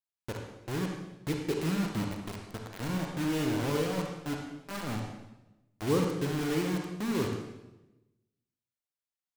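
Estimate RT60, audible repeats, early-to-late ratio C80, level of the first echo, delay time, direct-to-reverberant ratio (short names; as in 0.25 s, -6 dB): 1.0 s, none, 5.5 dB, none, none, 1.5 dB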